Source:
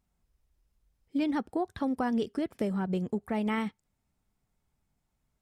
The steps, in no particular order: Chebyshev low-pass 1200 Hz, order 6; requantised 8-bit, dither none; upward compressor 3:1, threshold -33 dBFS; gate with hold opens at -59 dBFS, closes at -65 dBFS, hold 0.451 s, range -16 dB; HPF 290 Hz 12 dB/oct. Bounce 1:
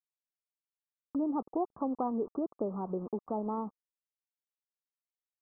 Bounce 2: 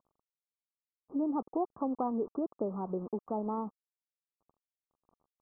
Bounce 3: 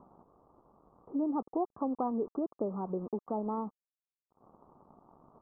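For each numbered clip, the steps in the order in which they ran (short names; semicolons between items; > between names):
HPF > requantised > upward compressor > Chebyshev low-pass > gate with hold; upward compressor > gate with hold > HPF > requantised > Chebyshev low-pass; HPF > upward compressor > gate with hold > requantised > Chebyshev low-pass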